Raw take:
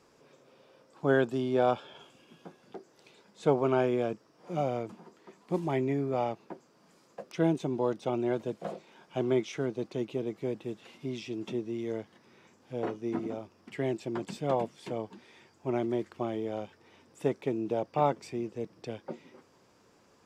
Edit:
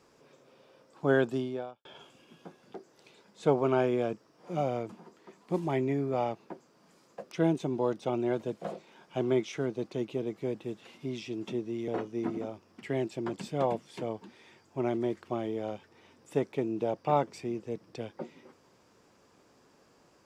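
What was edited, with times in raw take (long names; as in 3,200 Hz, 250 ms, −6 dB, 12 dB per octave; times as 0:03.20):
0:01.37–0:01.85: fade out quadratic
0:11.88–0:12.77: remove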